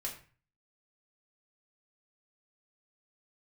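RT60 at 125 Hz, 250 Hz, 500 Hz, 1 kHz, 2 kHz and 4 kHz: 0.55, 0.45, 0.35, 0.40, 0.40, 0.30 s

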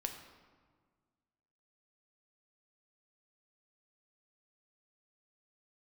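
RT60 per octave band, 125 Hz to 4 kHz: 2.1, 2.0, 1.6, 1.6, 1.2, 0.95 s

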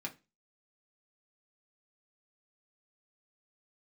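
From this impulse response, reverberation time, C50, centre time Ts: 0.25 s, 17.0 dB, 9 ms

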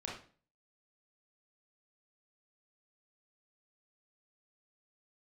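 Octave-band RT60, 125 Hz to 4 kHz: 0.55, 0.45, 0.45, 0.40, 0.40, 0.35 s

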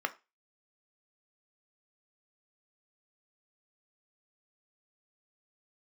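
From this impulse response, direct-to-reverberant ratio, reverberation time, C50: 8.0 dB, 0.25 s, 18.5 dB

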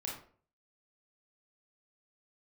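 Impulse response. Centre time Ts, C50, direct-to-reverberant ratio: 37 ms, 4.0 dB, -3.5 dB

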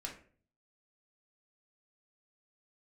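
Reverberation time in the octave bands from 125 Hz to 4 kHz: 0.80, 0.60, 0.50, 0.40, 0.40, 0.30 s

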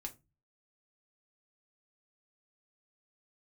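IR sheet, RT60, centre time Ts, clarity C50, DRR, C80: 0.25 s, 7 ms, 18.0 dB, 2.0 dB, 26.5 dB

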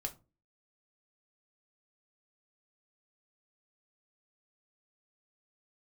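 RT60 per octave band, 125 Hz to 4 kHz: 0.45, 0.45, 0.35, 0.30, 0.20, 0.20 s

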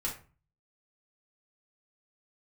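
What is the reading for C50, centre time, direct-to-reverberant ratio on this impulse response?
8.5 dB, 22 ms, -4.5 dB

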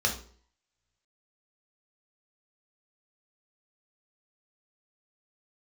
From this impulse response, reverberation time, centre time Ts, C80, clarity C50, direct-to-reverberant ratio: 0.50 s, 17 ms, 14.5 dB, 9.0 dB, 0.0 dB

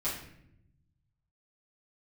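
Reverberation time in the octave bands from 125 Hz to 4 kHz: 2.0, 1.3, 0.85, 0.60, 0.70, 0.50 s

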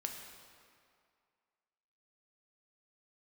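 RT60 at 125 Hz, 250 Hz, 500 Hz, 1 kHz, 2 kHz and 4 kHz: 1.9, 2.0, 2.2, 2.3, 2.0, 1.7 s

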